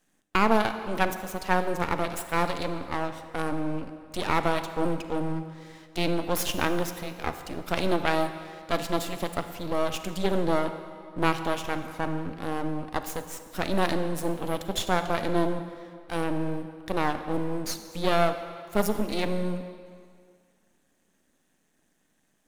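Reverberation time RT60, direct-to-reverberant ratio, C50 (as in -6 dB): 2.2 s, 9.0 dB, 9.5 dB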